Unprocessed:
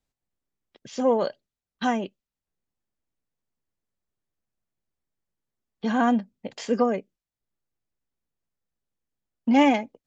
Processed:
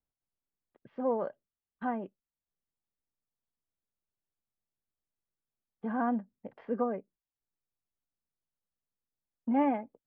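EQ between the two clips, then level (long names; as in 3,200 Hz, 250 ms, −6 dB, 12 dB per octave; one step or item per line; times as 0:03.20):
transistor ladder low-pass 1,900 Hz, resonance 20%
high-frequency loss of the air 88 metres
−4.0 dB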